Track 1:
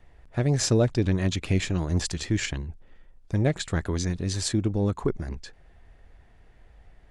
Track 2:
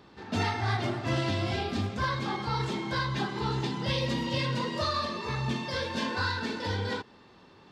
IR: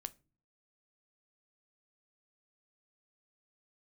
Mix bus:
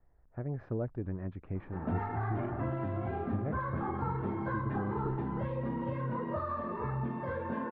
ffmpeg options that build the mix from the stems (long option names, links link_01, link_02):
-filter_complex "[0:a]volume=-13.5dB[link_01];[1:a]acompressor=threshold=-31dB:ratio=6,adelay=1550,volume=0.5dB[link_02];[link_01][link_02]amix=inputs=2:normalize=0,lowpass=frequency=1500:width=0.5412,lowpass=frequency=1500:width=1.3066"